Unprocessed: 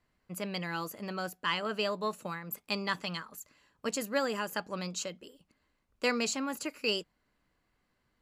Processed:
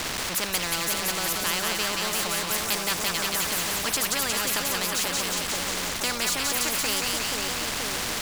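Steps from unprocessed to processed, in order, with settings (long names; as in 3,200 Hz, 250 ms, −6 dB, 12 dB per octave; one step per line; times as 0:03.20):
converter with a step at zero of −41.5 dBFS
high-shelf EQ 8,700 Hz −8.5 dB
echo with a time of its own for lows and highs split 1,000 Hz, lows 480 ms, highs 179 ms, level −4 dB
every bin compressed towards the loudest bin 4 to 1
level +5.5 dB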